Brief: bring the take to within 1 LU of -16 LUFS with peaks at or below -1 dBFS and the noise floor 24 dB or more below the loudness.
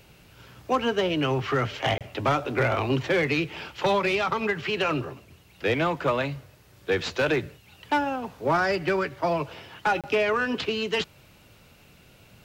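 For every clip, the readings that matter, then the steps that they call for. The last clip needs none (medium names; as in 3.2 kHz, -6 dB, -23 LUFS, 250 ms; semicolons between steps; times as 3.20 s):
clipped samples 0.5%; clipping level -16.0 dBFS; dropouts 2; longest dropout 27 ms; loudness -26.0 LUFS; peak level -16.0 dBFS; loudness target -16.0 LUFS
-> clip repair -16 dBFS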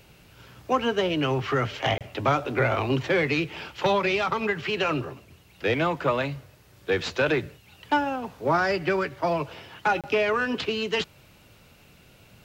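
clipped samples 0.0%; dropouts 2; longest dropout 27 ms
-> interpolate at 1.98/10.01 s, 27 ms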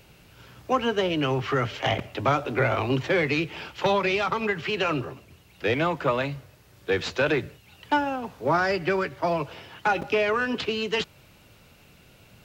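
dropouts 0; loudness -26.0 LUFS; peak level -7.5 dBFS; loudness target -16.0 LUFS
-> trim +10 dB; peak limiter -1 dBFS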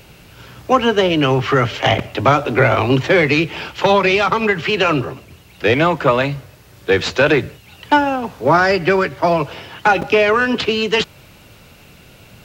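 loudness -16.0 LUFS; peak level -1.0 dBFS; noise floor -45 dBFS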